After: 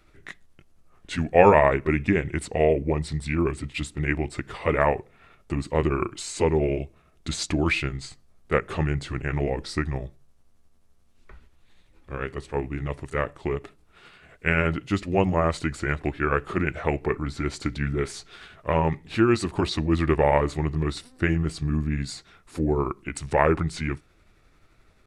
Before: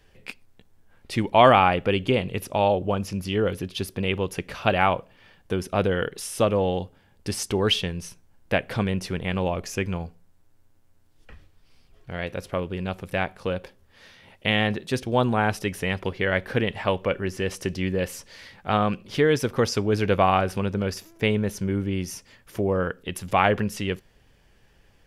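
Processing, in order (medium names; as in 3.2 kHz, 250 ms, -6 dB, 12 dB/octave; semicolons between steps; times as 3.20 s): rotating-head pitch shifter -4.5 st; trim +1 dB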